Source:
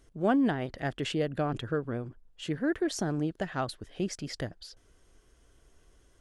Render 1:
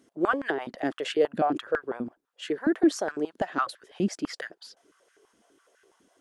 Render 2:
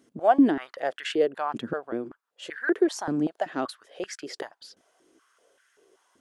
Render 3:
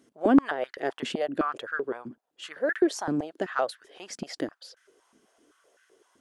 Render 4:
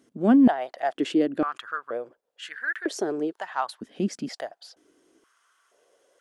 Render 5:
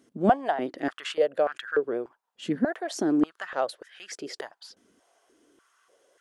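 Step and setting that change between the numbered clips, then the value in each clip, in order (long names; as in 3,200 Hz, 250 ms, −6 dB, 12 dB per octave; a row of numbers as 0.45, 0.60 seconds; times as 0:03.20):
high-pass on a step sequencer, speed: 12, 5.2, 7.8, 2.1, 3.4 Hertz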